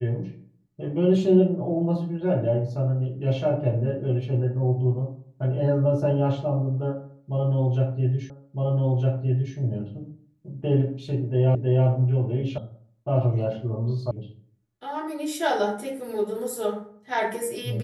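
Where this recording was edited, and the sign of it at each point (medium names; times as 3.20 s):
8.30 s: repeat of the last 1.26 s
11.55 s: repeat of the last 0.32 s
12.58 s: sound stops dead
14.11 s: sound stops dead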